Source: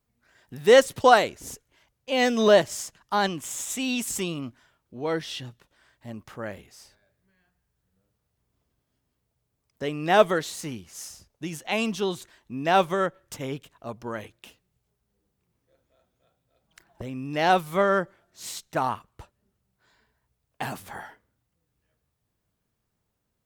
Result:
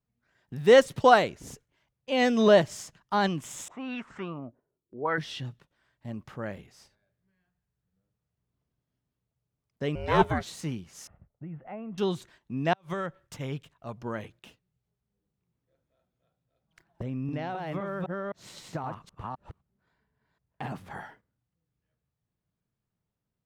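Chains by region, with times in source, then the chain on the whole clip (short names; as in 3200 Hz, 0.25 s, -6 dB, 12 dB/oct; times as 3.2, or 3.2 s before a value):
3.68–5.18 low shelf 410 Hz -11.5 dB + envelope low-pass 350–1700 Hz up, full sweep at -27 dBFS
9.95–10.47 notch 3100 Hz, Q 18 + ring modulator 250 Hz
11.07–11.98 Bessel low-pass 1200 Hz, order 8 + compressor 2:1, threshold -44 dBFS + comb 1.5 ms, depth 32%
12.73–13.98 bell 300 Hz -4.5 dB 2.3 oct + compressor, threshold -26 dBFS + flipped gate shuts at -19 dBFS, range -33 dB
17.03–20.91 reverse delay 0.258 s, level -0.5 dB + high shelf 3100 Hz -9 dB + compressor 10:1, threshold -29 dBFS
whole clip: high shelf 6800 Hz -10.5 dB; gate -55 dBFS, range -7 dB; bell 150 Hz +7 dB 1 oct; gain -2 dB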